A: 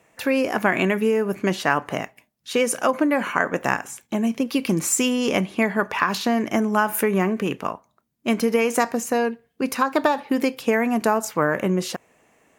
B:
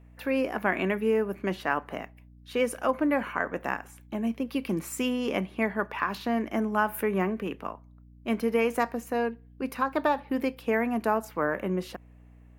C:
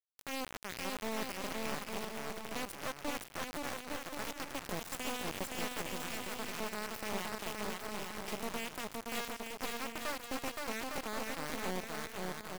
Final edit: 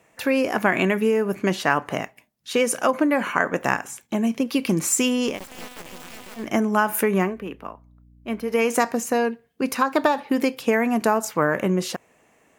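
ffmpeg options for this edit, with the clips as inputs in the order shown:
-filter_complex "[0:a]asplit=3[s0][s1][s2];[s0]atrim=end=5.4,asetpts=PTS-STARTPTS[s3];[2:a]atrim=start=5.24:end=6.51,asetpts=PTS-STARTPTS[s4];[s1]atrim=start=6.35:end=7.39,asetpts=PTS-STARTPTS[s5];[1:a]atrim=start=7.23:end=8.6,asetpts=PTS-STARTPTS[s6];[s2]atrim=start=8.44,asetpts=PTS-STARTPTS[s7];[s3][s4]acrossfade=d=0.16:c1=tri:c2=tri[s8];[s8][s5]acrossfade=d=0.16:c1=tri:c2=tri[s9];[s9][s6]acrossfade=d=0.16:c1=tri:c2=tri[s10];[s10][s7]acrossfade=d=0.16:c1=tri:c2=tri"

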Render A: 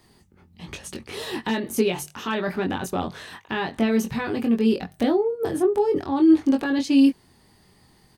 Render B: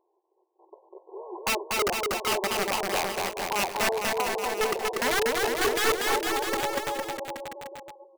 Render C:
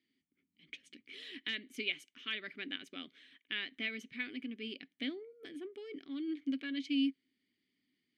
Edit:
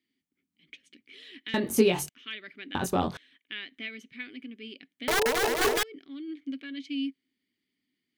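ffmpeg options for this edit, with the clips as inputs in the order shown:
-filter_complex "[0:a]asplit=2[s0][s1];[2:a]asplit=4[s2][s3][s4][s5];[s2]atrim=end=1.542[s6];[s0]atrim=start=1.538:end=2.092[s7];[s3]atrim=start=2.088:end=2.752[s8];[s1]atrim=start=2.748:end=3.172[s9];[s4]atrim=start=3.168:end=5.082[s10];[1:a]atrim=start=5.078:end=5.832[s11];[s5]atrim=start=5.828[s12];[s6][s7]acrossfade=d=0.004:c1=hsin:c2=hsin[s13];[s13][s8]acrossfade=d=0.004:c1=hsin:c2=hsin[s14];[s14][s9]acrossfade=d=0.004:c1=hsin:c2=hsin[s15];[s15][s10]acrossfade=d=0.004:c1=hsin:c2=hsin[s16];[s16][s11]acrossfade=d=0.004:c1=hsin:c2=hsin[s17];[s17][s12]acrossfade=d=0.004:c1=hsin:c2=hsin"

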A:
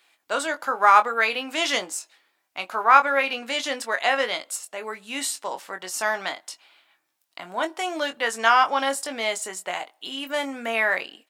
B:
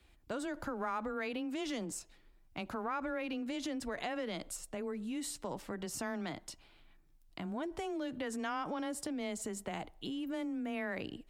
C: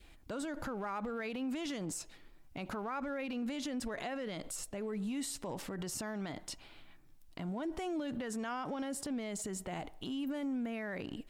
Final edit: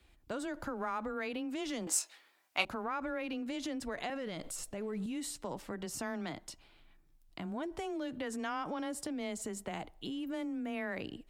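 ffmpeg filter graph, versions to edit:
-filter_complex "[1:a]asplit=3[s0][s1][s2];[s0]atrim=end=1.872[s3];[0:a]atrim=start=1.868:end=2.652[s4];[s1]atrim=start=2.648:end=4.102[s5];[2:a]atrim=start=4.098:end=5.062[s6];[s2]atrim=start=5.058[s7];[s3][s4]acrossfade=d=0.004:c1=hsin:c2=hsin[s8];[s8][s5]acrossfade=d=0.004:c1=hsin:c2=hsin[s9];[s9][s6]acrossfade=d=0.004:c1=hsin:c2=hsin[s10];[s10][s7]acrossfade=d=0.004:c1=hsin:c2=hsin"

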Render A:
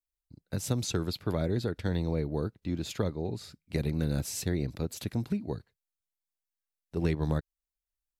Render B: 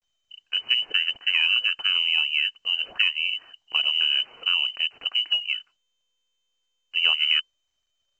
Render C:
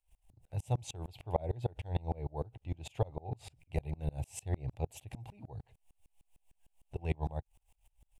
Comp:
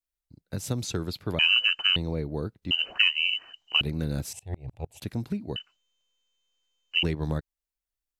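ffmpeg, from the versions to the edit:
-filter_complex "[1:a]asplit=3[s0][s1][s2];[0:a]asplit=5[s3][s4][s5][s6][s7];[s3]atrim=end=1.392[s8];[s0]atrim=start=1.388:end=1.962[s9];[s4]atrim=start=1.958:end=2.712[s10];[s1]atrim=start=2.708:end=3.812[s11];[s5]atrim=start=3.808:end=4.332[s12];[2:a]atrim=start=4.328:end=5.022[s13];[s6]atrim=start=5.018:end=5.562[s14];[s2]atrim=start=5.558:end=7.032[s15];[s7]atrim=start=7.028[s16];[s8][s9]acrossfade=d=0.004:c1=hsin:c2=hsin[s17];[s17][s10]acrossfade=d=0.004:c1=hsin:c2=hsin[s18];[s18][s11]acrossfade=d=0.004:c1=hsin:c2=hsin[s19];[s19][s12]acrossfade=d=0.004:c1=hsin:c2=hsin[s20];[s20][s13]acrossfade=d=0.004:c1=hsin:c2=hsin[s21];[s21][s14]acrossfade=d=0.004:c1=hsin:c2=hsin[s22];[s22][s15]acrossfade=d=0.004:c1=hsin:c2=hsin[s23];[s23][s16]acrossfade=d=0.004:c1=hsin:c2=hsin"

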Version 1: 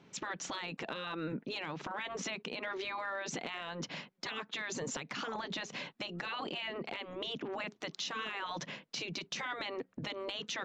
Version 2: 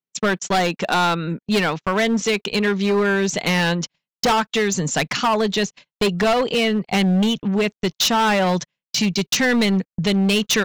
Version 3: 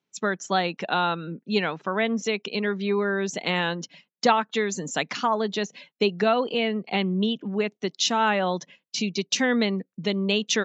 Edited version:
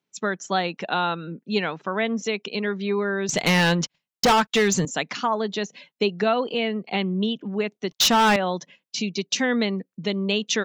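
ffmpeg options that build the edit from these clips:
-filter_complex "[1:a]asplit=2[s0][s1];[2:a]asplit=3[s2][s3][s4];[s2]atrim=end=3.292[s5];[s0]atrim=start=3.288:end=4.852[s6];[s3]atrim=start=4.848:end=7.912[s7];[s1]atrim=start=7.908:end=8.362[s8];[s4]atrim=start=8.358[s9];[s5][s6]acrossfade=d=0.004:c1=hsin:c2=hsin[s10];[s10][s7]acrossfade=d=0.004:c1=hsin:c2=hsin[s11];[s11][s8]acrossfade=d=0.004:c1=hsin:c2=hsin[s12];[s12][s9]acrossfade=d=0.004:c1=hsin:c2=hsin"

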